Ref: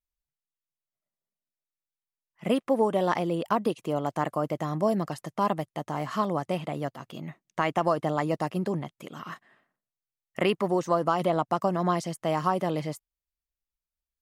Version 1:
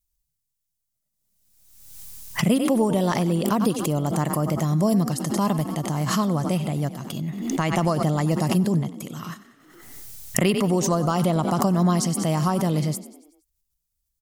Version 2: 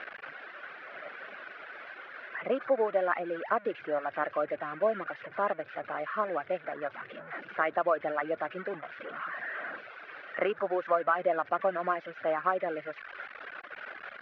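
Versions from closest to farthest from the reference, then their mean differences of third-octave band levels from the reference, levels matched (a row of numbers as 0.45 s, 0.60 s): 1, 2; 7.0 dB, 9.5 dB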